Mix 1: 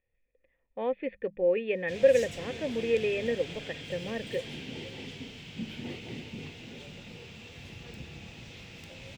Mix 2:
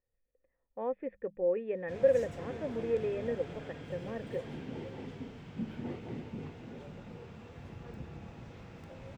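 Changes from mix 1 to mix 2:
speech −5.0 dB
master: add high shelf with overshoot 1,900 Hz −12.5 dB, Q 1.5

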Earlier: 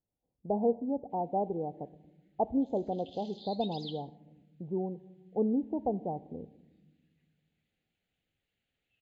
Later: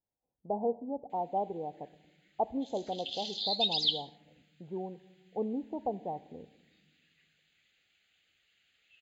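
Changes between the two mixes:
background +9.0 dB
master: add tilt shelving filter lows −8 dB, about 760 Hz

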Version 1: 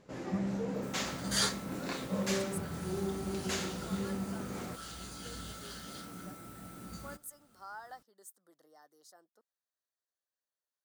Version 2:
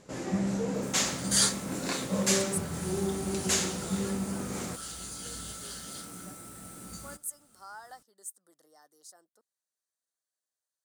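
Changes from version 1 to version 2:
first sound +4.5 dB
master: add parametric band 8,700 Hz +12 dB 1.2 octaves

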